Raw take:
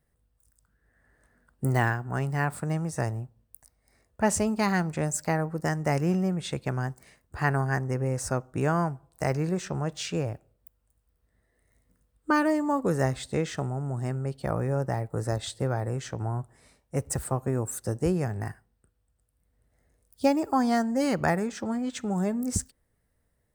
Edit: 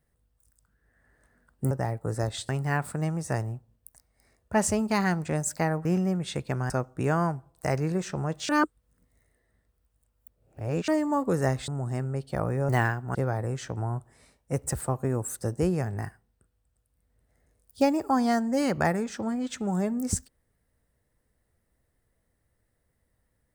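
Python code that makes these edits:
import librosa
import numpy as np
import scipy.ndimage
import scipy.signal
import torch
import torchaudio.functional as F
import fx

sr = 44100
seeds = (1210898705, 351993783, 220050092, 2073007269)

y = fx.edit(x, sr, fx.swap(start_s=1.71, length_s=0.46, other_s=14.8, other_length_s=0.78),
    fx.cut(start_s=5.53, length_s=0.49),
    fx.cut(start_s=6.87, length_s=1.4),
    fx.reverse_span(start_s=10.06, length_s=2.39),
    fx.cut(start_s=13.25, length_s=0.54), tone=tone)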